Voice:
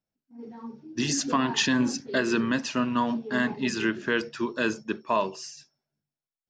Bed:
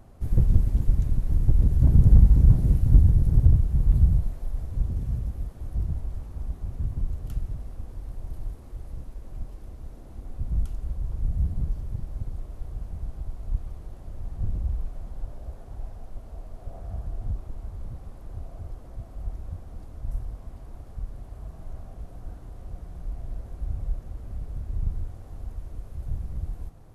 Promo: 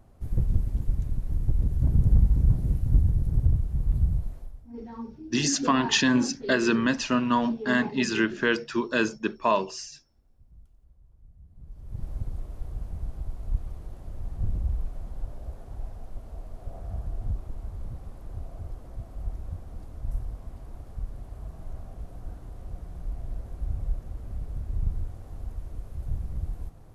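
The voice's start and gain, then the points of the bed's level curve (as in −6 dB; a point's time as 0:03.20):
4.35 s, +2.0 dB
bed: 0:04.38 −5 dB
0:04.78 −26.5 dB
0:11.47 −26.5 dB
0:12.04 0 dB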